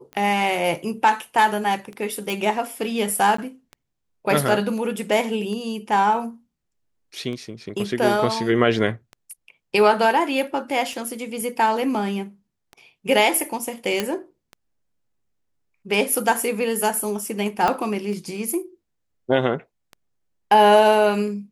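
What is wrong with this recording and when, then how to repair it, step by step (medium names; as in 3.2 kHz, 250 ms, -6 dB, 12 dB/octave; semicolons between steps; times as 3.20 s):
tick 33 1/3 rpm -23 dBFS
2.30 s: pop
3.37–3.38 s: dropout 14 ms
14.00 s: pop -7 dBFS
17.68 s: pop -8 dBFS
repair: de-click; interpolate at 3.37 s, 14 ms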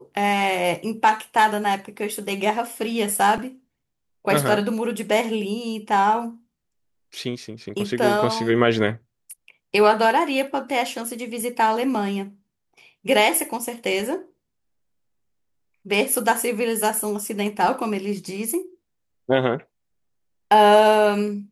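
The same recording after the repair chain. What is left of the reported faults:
17.68 s: pop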